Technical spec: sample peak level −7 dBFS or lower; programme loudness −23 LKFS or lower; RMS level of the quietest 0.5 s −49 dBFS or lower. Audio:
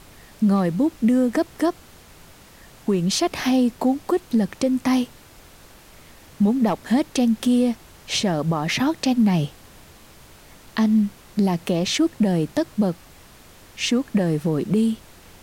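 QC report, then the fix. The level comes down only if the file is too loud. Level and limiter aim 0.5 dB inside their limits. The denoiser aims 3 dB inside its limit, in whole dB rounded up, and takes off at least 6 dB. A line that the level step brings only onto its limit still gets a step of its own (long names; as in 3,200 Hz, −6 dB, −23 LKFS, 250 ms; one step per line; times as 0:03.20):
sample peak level −11.0 dBFS: in spec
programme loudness −21.5 LKFS: out of spec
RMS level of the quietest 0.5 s −47 dBFS: out of spec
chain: broadband denoise 6 dB, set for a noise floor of −47 dBFS
level −2 dB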